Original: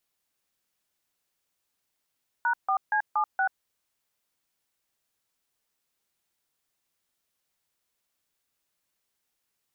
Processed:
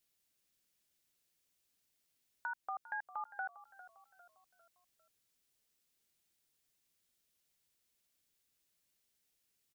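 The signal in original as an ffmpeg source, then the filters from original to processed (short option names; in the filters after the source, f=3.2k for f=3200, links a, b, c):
-f lavfi -i "aevalsrc='0.0596*clip(min(mod(t,0.235),0.085-mod(t,0.235))/0.002,0,1)*(eq(floor(t/0.235),0)*(sin(2*PI*941*mod(t,0.235))+sin(2*PI*1477*mod(t,0.235)))+eq(floor(t/0.235),1)*(sin(2*PI*770*mod(t,0.235))+sin(2*PI*1209*mod(t,0.235)))+eq(floor(t/0.235),2)*(sin(2*PI*852*mod(t,0.235))+sin(2*PI*1633*mod(t,0.235)))+eq(floor(t/0.235),3)*(sin(2*PI*852*mod(t,0.235))+sin(2*PI*1209*mod(t,0.235)))+eq(floor(t/0.235),4)*(sin(2*PI*770*mod(t,0.235))+sin(2*PI*1477*mod(t,0.235))))':d=1.175:s=44100"
-filter_complex "[0:a]equalizer=f=1k:t=o:w=1.7:g=-8.5,acompressor=threshold=-44dB:ratio=2,asplit=5[a][b][c][d][e];[b]adelay=401,afreqshift=-33,volume=-16dB[f];[c]adelay=802,afreqshift=-66,volume=-22.9dB[g];[d]adelay=1203,afreqshift=-99,volume=-29.9dB[h];[e]adelay=1604,afreqshift=-132,volume=-36.8dB[i];[a][f][g][h][i]amix=inputs=5:normalize=0"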